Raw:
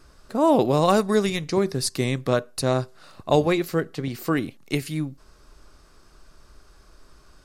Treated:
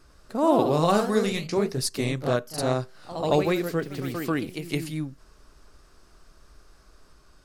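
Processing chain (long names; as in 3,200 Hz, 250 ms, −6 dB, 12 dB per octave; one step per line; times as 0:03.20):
delay with pitch and tempo change per echo 101 ms, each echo +1 semitone, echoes 3, each echo −6 dB
level −3.5 dB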